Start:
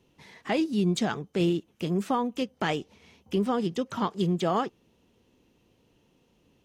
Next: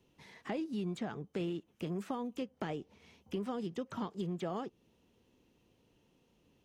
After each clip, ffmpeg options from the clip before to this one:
ffmpeg -i in.wav -filter_complex "[0:a]acrossover=split=650|2300[link_01][link_02][link_03];[link_01]acompressor=threshold=-31dB:ratio=4[link_04];[link_02]acompressor=threshold=-41dB:ratio=4[link_05];[link_03]acompressor=threshold=-53dB:ratio=4[link_06];[link_04][link_05][link_06]amix=inputs=3:normalize=0,volume=-5dB" out.wav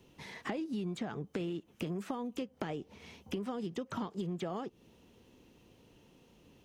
ffmpeg -i in.wav -af "acompressor=threshold=-44dB:ratio=4,volume=8.5dB" out.wav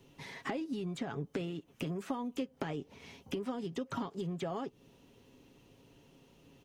ffmpeg -i in.wav -af "aecho=1:1:7.3:0.41" out.wav

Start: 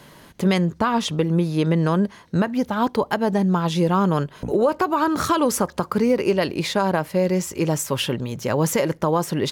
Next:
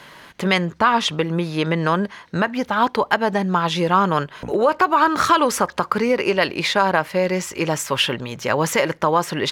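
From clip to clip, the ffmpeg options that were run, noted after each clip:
ffmpeg -i in.wav -af "equalizer=frequency=1900:width=0.34:gain=13,volume=-4.5dB" out.wav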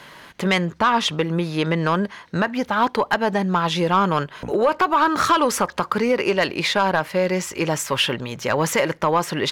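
ffmpeg -i in.wav -af "asoftclip=type=tanh:threshold=-8dB" out.wav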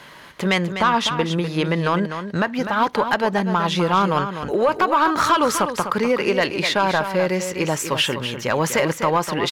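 ffmpeg -i in.wav -af "aecho=1:1:250:0.355" out.wav

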